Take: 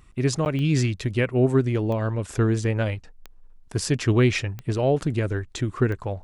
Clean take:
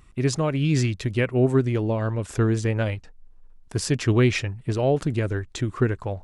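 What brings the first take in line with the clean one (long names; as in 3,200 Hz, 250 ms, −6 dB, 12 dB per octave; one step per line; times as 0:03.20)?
click removal
repair the gap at 0:00.45, 9.4 ms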